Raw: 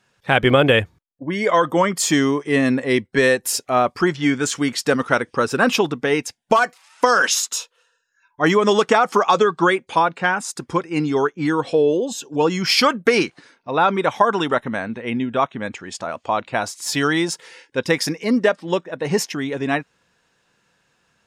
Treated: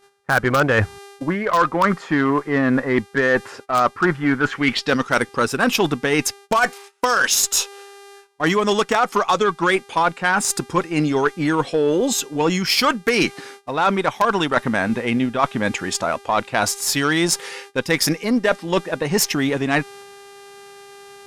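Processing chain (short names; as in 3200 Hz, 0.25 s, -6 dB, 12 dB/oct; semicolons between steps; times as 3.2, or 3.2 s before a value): low-pass sweep 1400 Hz -> 13000 Hz, 4.44–5.32; buzz 400 Hz, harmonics 30, -49 dBFS -5 dB/oct; in parallel at -10 dB: wrapped overs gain 3 dB; on the sum: dynamic EQ 480 Hz, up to -3 dB, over -25 dBFS, Q 1.2; added harmonics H 6 -25 dB, 7 -31 dB, 8 -24 dB, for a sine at -0.5 dBFS; reverse; compressor 4:1, threshold -25 dBFS, peak gain reduction 15.5 dB; reverse; gate -48 dBFS, range -18 dB; gain +8.5 dB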